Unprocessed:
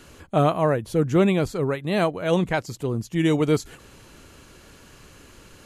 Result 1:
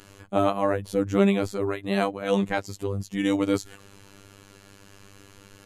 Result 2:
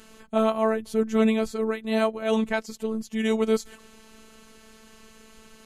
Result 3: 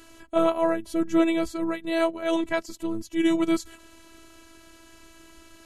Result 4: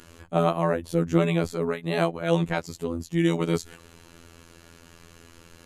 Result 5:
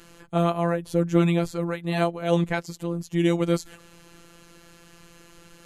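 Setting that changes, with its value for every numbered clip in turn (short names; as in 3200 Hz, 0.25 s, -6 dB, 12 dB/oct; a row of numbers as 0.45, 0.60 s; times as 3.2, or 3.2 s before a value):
robotiser, frequency: 99, 220, 330, 84, 170 Hz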